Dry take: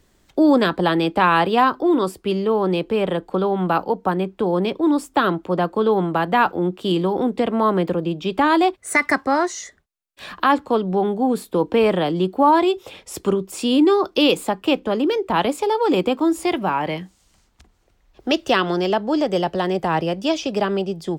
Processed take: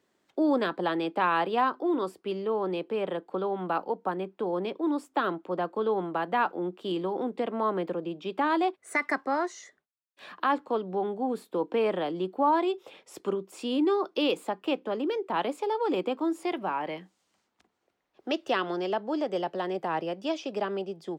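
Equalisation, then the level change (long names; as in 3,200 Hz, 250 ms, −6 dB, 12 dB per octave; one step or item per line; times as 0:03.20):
high-pass filter 260 Hz 12 dB per octave
high-shelf EQ 4,400 Hz −9.5 dB
−8.5 dB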